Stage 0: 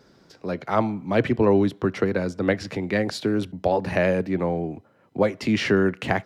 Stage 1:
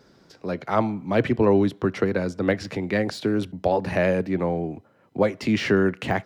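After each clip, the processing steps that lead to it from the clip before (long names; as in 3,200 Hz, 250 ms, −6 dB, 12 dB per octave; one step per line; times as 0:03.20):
de-essing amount 75%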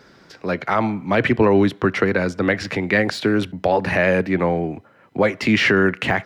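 parametric band 1,900 Hz +8 dB 1.8 octaves
brickwall limiter −10.5 dBFS, peak gain reduction 6.5 dB
level +4 dB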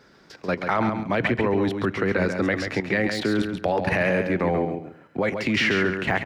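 output level in coarse steps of 11 dB
on a send: repeating echo 137 ms, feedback 22%, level −6.5 dB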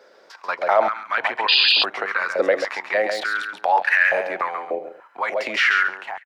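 fade-out on the ending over 0.53 s
sound drawn into the spectrogram noise, 0:01.48–0:01.84, 2,400–5,000 Hz −18 dBFS
high-pass on a step sequencer 3.4 Hz 530–1,600 Hz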